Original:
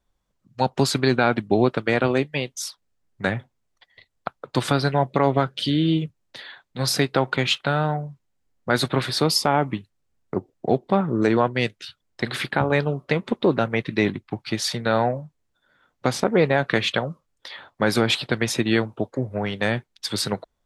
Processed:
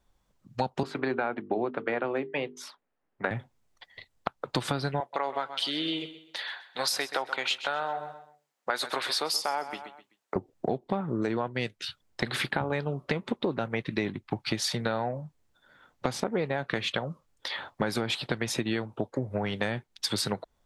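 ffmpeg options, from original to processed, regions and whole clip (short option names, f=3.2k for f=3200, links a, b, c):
-filter_complex "[0:a]asettb=1/sr,asplit=3[a][b][c];[a]atrim=end=0.834[d];[b]atrim=start=0.83:end=3.31,asetpts=PTS-STARTPTS,afade=t=in:d=0.004:c=qsin,afade=t=out:st=2.476:d=0.004:c=qsin,acrossover=split=230 2600:gain=0.178 1 0.1[e][f][g];[e][f][g]amix=inputs=3:normalize=0,bandreject=f=50:t=h:w=6,bandreject=f=100:t=h:w=6,bandreject=f=150:t=h:w=6,bandreject=f=200:t=h:w=6,bandreject=f=250:t=h:w=6,bandreject=f=300:t=h:w=6,bandreject=f=350:t=h:w=6,bandreject=f=400:t=h:w=6,bandreject=f=450:t=h:w=6[h];[c]atrim=start=3.306[i];[d][h]acrossfade=d=0.004:c1=hsin:c2=qsin[j];[j][i]acrossfade=d=0.004:c1=qsin:c2=hsin,asettb=1/sr,asplit=3[k][l][m];[k]atrim=end=5.004[n];[l]atrim=start=5:end=10.36,asetpts=PTS-STARTPTS,afade=t=in:d=0.004:c=qsin,afade=t=out:st=5.356:d=0.004:c=qsin,highpass=610,aecho=1:1:128|256|384:0.178|0.0569|0.0182,atrim=end_sample=236376[o];[m]atrim=start=10.356[p];[n][o]acrossfade=d=0.004:c1=hsin:c2=qsin[q];[q][p]acrossfade=d=0.004:c1=qsin:c2=hsin,equalizer=f=850:t=o:w=0.32:g=2.5,acompressor=threshold=-30dB:ratio=6,volume=3.5dB"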